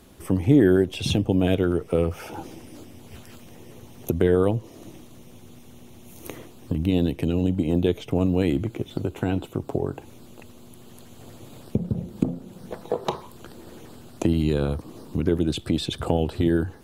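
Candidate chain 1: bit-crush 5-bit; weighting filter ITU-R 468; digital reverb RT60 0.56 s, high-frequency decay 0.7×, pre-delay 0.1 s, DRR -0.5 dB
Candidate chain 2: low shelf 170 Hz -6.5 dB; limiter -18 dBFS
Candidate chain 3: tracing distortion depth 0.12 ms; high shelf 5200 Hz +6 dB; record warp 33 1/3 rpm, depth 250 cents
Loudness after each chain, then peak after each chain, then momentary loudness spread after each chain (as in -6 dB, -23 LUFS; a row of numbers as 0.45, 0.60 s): -22.5, -31.0, -24.0 LUFS; -3.5, -18.0, -5.5 dBFS; 16, 20, 22 LU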